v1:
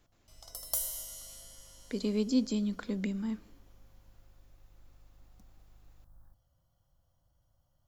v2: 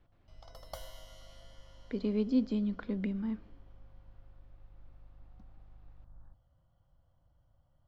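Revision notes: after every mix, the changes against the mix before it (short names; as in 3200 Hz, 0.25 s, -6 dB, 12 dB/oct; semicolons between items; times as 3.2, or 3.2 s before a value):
background +4.0 dB; master: add air absorption 320 m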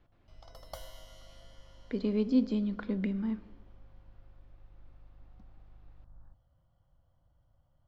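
speech: send +11.0 dB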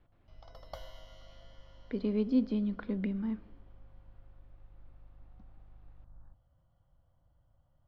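speech: send -6.0 dB; master: add running mean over 5 samples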